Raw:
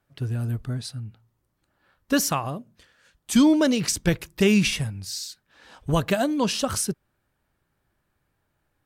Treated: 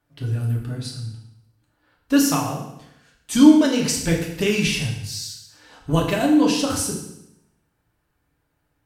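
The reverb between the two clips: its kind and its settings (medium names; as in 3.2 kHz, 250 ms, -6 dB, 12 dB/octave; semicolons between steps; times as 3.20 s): FDN reverb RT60 0.83 s, low-frequency decay 1.1×, high-frequency decay 0.95×, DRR -2 dB; trim -2 dB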